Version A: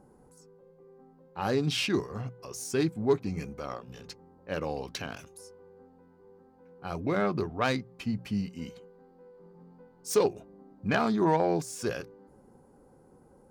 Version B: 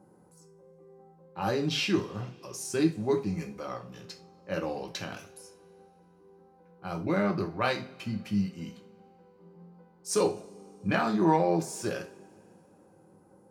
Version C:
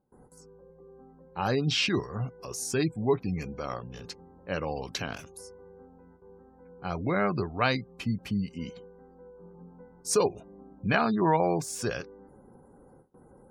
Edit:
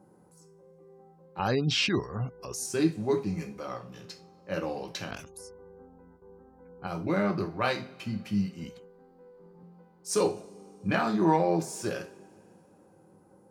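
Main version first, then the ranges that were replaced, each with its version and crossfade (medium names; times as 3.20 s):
B
1.39–2.66 s: from C
5.11–6.87 s: from C
8.64–9.63 s: from A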